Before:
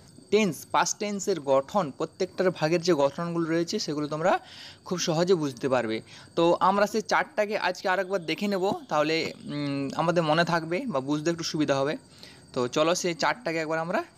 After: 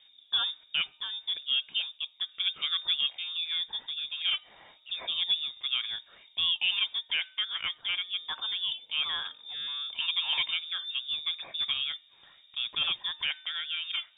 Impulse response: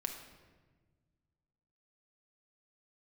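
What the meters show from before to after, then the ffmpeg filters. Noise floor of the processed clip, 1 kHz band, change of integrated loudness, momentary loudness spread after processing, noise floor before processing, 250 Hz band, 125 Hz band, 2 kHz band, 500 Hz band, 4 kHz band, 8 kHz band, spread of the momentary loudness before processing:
-60 dBFS, -19.5 dB, -3.5 dB, 7 LU, -53 dBFS, under -35 dB, under -30 dB, -4.5 dB, under -35 dB, +9.5 dB, under -40 dB, 8 LU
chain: -af "lowpass=f=3.2k:t=q:w=0.5098,lowpass=f=3.2k:t=q:w=0.6013,lowpass=f=3.2k:t=q:w=0.9,lowpass=f=3.2k:t=q:w=2.563,afreqshift=-3800,bandreject=f=304.9:t=h:w=4,bandreject=f=609.8:t=h:w=4,bandreject=f=914.7:t=h:w=4,bandreject=f=1.2196k:t=h:w=4,bandreject=f=1.5245k:t=h:w=4,bandreject=f=1.8294k:t=h:w=4,volume=-6.5dB"

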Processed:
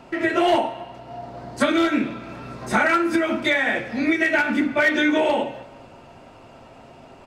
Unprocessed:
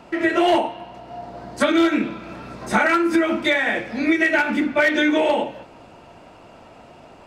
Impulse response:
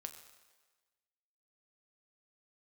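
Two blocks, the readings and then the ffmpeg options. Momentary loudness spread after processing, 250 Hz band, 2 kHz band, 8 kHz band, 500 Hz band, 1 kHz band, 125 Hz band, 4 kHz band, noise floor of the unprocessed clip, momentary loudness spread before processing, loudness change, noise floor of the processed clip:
18 LU, -2.0 dB, -0.5 dB, -1.0 dB, -1.5 dB, -1.0 dB, +0.5 dB, -1.5 dB, -46 dBFS, 19 LU, -1.5 dB, -47 dBFS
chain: -filter_complex "[0:a]asplit=2[a][b];[b]aecho=1:1:7.5:0.65[c];[1:a]atrim=start_sample=2205,lowshelf=f=220:g=7.5[d];[c][d]afir=irnorm=-1:irlink=0,volume=-2dB[e];[a][e]amix=inputs=2:normalize=0,volume=-4.5dB"

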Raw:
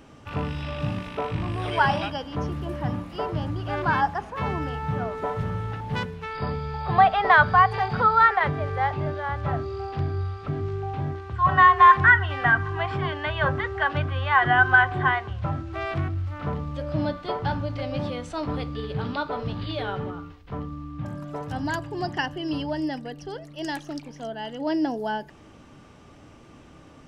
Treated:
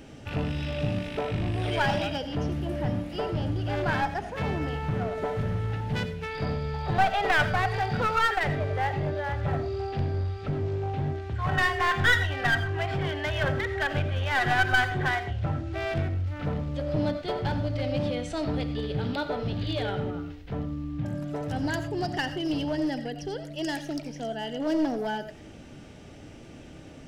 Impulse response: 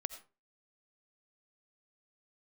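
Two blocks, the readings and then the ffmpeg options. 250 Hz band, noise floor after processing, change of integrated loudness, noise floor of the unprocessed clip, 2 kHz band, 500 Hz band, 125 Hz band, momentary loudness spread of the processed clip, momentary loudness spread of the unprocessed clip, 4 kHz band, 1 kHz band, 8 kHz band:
0.0 dB, -46 dBFS, -4.5 dB, -49 dBFS, -5.0 dB, 0.0 dB, -0.5 dB, 10 LU, 16 LU, +1.5 dB, -8.0 dB, n/a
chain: -filter_complex "[0:a]equalizer=f=1.1k:t=o:w=0.44:g=-14,asplit=2[a][b];[b]acompressor=threshold=-36dB:ratio=6,volume=-1.5dB[c];[a][c]amix=inputs=2:normalize=0,aeval=exprs='clip(val(0),-1,0.0631)':c=same[d];[1:a]atrim=start_sample=2205,afade=t=out:st=0.18:d=0.01,atrim=end_sample=8379[e];[d][e]afir=irnorm=-1:irlink=0"

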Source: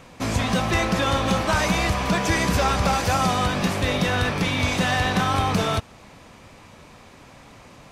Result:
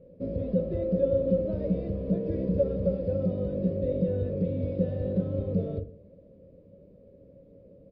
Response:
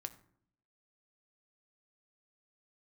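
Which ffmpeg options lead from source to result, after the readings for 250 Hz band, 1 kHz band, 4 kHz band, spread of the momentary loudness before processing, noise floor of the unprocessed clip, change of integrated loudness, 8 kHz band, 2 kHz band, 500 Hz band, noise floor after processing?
-4.0 dB, under -30 dB, under -35 dB, 2 LU, -48 dBFS, -7.0 dB, under -40 dB, under -35 dB, -0.5 dB, -55 dBFS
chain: -filter_complex "[0:a]firequalizer=gain_entry='entry(300,0);entry(540,9);entry(800,-30)':delay=0.05:min_phase=1[a];[1:a]atrim=start_sample=2205,asetrate=70560,aresample=44100[b];[a][b]afir=irnorm=-1:irlink=0,aresample=11025,aresample=44100"

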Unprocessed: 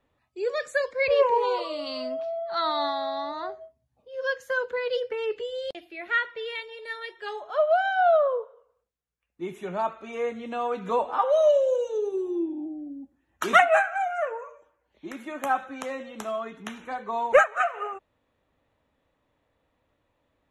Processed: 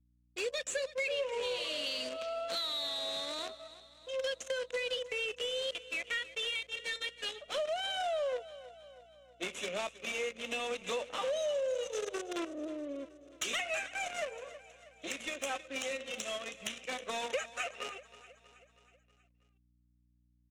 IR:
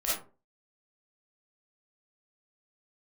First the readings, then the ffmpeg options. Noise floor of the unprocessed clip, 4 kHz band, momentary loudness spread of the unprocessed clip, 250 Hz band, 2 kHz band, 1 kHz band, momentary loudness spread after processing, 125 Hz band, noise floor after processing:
-74 dBFS, +2.5 dB, 17 LU, -10.5 dB, -9.0 dB, -16.5 dB, 12 LU, n/a, -71 dBFS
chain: -filter_complex "[0:a]aexciter=amount=13.8:drive=1.6:freq=2.2k,acrusher=bits=5:dc=4:mix=0:aa=0.000001,acontrast=41,highpass=f=200:w=0.5412,highpass=f=200:w=1.3066,equalizer=f=360:t=q:w=4:g=-5,equalizer=f=530:t=q:w=4:g=9,equalizer=f=870:t=q:w=4:g=-8,equalizer=f=2.7k:t=q:w=4:g=3,equalizer=f=4.6k:t=q:w=4:g=-9,lowpass=f=8.2k:w=0.5412,lowpass=f=8.2k:w=1.3066,acompressor=threshold=-29dB:ratio=5,anlmdn=0.398,asplit=2[a][b];[b]aecho=0:1:320|640|960|1280|1600:0.133|0.0733|0.0403|0.0222|0.0122[c];[a][c]amix=inputs=2:normalize=0,asoftclip=type=tanh:threshold=-21dB,highshelf=f=2.1k:g=-2.5,aeval=exprs='val(0)+0.000501*(sin(2*PI*60*n/s)+sin(2*PI*2*60*n/s)/2+sin(2*PI*3*60*n/s)/3+sin(2*PI*4*60*n/s)/4+sin(2*PI*5*60*n/s)/5)':c=same,volume=-4dB" -ar 48000 -c:a aac -b:a 96k

